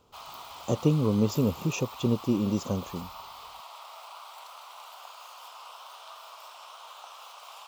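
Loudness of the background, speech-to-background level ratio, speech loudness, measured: −44.5 LKFS, 17.0 dB, −27.5 LKFS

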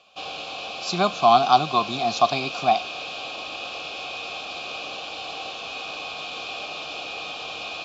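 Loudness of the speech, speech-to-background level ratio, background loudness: −21.0 LKFS, 11.0 dB, −32.0 LKFS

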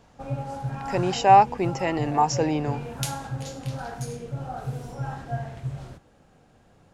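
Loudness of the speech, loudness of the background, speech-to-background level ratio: −22.0 LKFS, −33.5 LKFS, 11.5 dB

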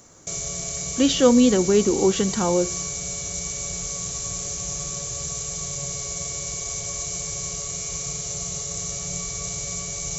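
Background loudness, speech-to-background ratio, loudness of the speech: −27.5 LKFS, 8.0 dB, −19.5 LKFS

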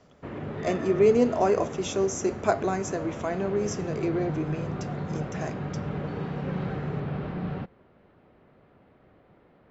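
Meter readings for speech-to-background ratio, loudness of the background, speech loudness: 7.5 dB, −34.5 LKFS, −27.0 LKFS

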